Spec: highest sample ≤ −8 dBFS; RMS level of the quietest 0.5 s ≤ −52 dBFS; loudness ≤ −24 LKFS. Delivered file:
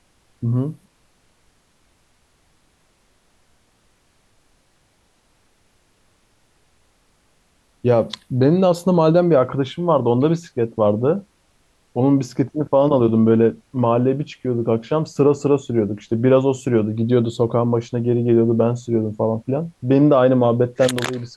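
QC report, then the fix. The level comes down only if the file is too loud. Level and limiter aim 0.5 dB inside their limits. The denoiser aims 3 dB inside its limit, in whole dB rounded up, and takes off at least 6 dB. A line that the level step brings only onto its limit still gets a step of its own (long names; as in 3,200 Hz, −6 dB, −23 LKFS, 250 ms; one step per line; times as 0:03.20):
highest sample −4.5 dBFS: out of spec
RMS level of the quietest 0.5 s −61 dBFS: in spec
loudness −18.5 LKFS: out of spec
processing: level −6 dB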